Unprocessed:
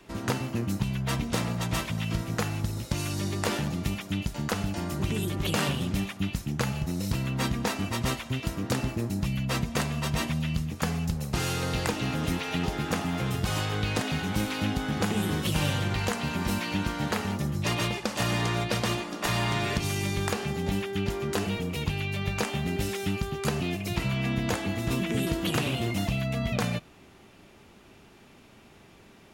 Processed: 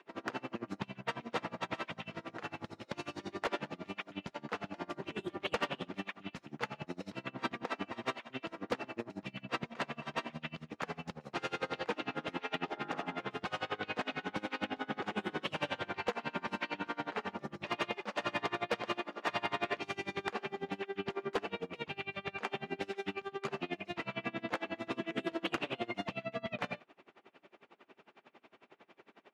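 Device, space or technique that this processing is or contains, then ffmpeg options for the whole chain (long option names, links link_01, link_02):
helicopter radio: -filter_complex "[0:a]highpass=370,lowpass=2600,aeval=exprs='val(0)*pow(10,-27*(0.5-0.5*cos(2*PI*11*n/s))/20)':channel_layout=same,asoftclip=type=hard:threshold=-26dB,asplit=3[link_01][link_02][link_03];[link_01]afade=type=out:start_time=12.76:duration=0.02[link_04];[link_02]bandreject=frequency=51.34:width_type=h:width=4,bandreject=frequency=102.68:width_type=h:width=4,bandreject=frequency=154.02:width_type=h:width=4,bandreject=frequency=205.36:width_type=h:width=4,bandreject=frequency=256.7:width_type=h:width=4,bandreject=frequency=308.04:width_type=h:width=4,bandreject=frequency=359.38:width_type=h:width=4,bandreject=frequency=410.72:width_type=h:width=4,bandreject=frequency=462.06:width_type=h:width=4,bandreject=frequency=513.4:width_type=h:width=4,bandreject=frequency=564.74:width_type=h:width=4,bandreject=frequency=616.08:width_type=h:width=4,bandreject=frequency=667.42:width_type=h:width=4,bandreject=frequency=718.76:width_type=h:width=4,bandreject=frequency=770.1:width_type=h:width=4,bandreject=frequency=821.44:width_type=h:width=4,bandreject=frequency=872.78:width_type=h:width=4,bandreject=frequency=924.12:width_type=h:width=4,bandreject=frequency=975.46:width_type=h:width=4,bandreject=frequency=1026.8:width_type=h:width=4,bandreject=frequency=1078.14:width_type=h:width=4,bandreject=frequency=1129.48:width_type=h:width=4,bandreject=frequency=1180.82:width_type=h:width=4,bandreject=frequency=1232.16:width_type=h:width=4,bandreject=frequency=1283.5:width_type=h:width=4,bandreject=frequency=1334.84:width_type=h:width=4,bandreject=frequency=1386.18:width_type=h:width=4,bandreject=frequency=1437.52:width_type=h:width=4,bandreject=frequency=1488.86:width_type=h:width=4,bandreject=frequency=1540.2:width_type=h:width=4,bandreject=frequency=1591.54:width_type=h:width=4,bandreject=frequency=1642.88:width_type=h:width=4,bandreject=frequency=1694.22:width_type=h:width=4,bandreject=frequency=1745.56:width_type=h:width=4,bandreject=frequency=1796.9:width_type=h:width=4,bandreject=frequency=1848.24:width_type=h:width=4,bandreject=frequency=1899.58:width_type=h:width=4,afade=type=in:start_time=12.76:duration=0.02,afade=type=out:start_time=13.18:duration=0.02[link_05];[link_03]afade=type=in:start_time=13.18:duration=0.02[link_06];[link_04][link_05][link_06]amix=inputs=3:normalize=0,volume=2dB"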